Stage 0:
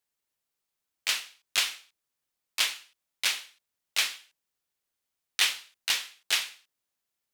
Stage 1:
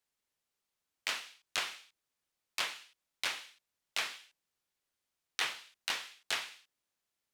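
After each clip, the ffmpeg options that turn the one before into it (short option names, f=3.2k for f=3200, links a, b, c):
-filter_complex "[0:a]highshelf=f=11k:g=-8,acrossover=split=270|1600[a][b][c];[c]acompressor=threshold=-35dB:ratio=6[d];[a][b][d]amix=inputs=3:normalize=0"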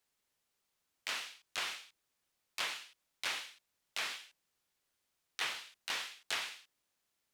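-af "alimiter=level_in=3.5dB:limit=-24dB:level=0:latency=1:release=132,volume=-3.5dB,volume=4dB"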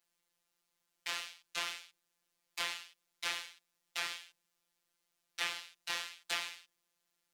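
-af "afftfilt=real='hypot(re,im)*cos(PI*b)':imag='0':win_size=1024:overlap=0.75,volume=3.5dB"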